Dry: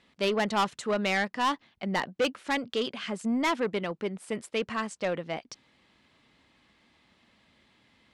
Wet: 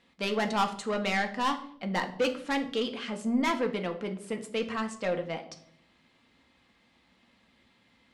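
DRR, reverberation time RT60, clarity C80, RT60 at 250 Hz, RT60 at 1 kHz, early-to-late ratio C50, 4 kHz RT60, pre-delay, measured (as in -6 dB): 4.0 dB, 0.65 s, 16.0 dB, 0.90 s, 0.55 s, 12.0 dB, 0.50 s, 4 ms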